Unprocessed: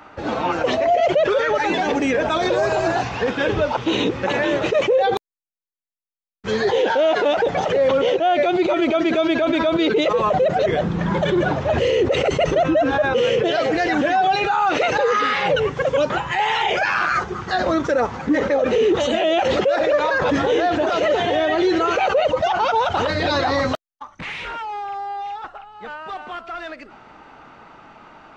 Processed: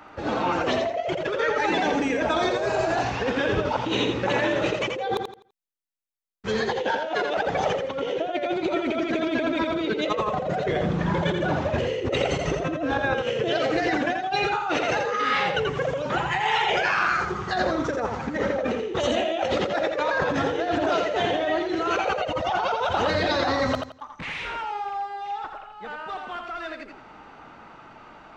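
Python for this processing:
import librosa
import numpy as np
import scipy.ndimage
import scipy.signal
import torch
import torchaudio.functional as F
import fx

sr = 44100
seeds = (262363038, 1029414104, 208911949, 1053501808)

y = fx.over_compress(x, sr, threshold_db=-20.0, ratio=-0.5)
y = fx.echo_feedback(y, sr, ms=84, feedback_pct=27, wet_db=-5.5)
y = y * librosa.db_to_amplitude(-5.0)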